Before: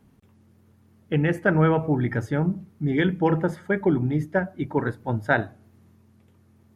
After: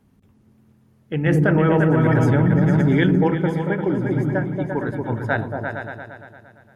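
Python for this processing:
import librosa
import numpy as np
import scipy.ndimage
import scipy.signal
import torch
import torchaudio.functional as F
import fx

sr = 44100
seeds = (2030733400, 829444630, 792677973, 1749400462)

y = fx.echo_opening(x, sr, ms=115, hz=200, octaves=2, feedback_pct=70, wet_db=0)
y = fx.env_flatten(y, sr, amount_pct=100, at=(1.26, 3.28))
y = F.gain(torch.from_numpy(y), -1.5).numpy()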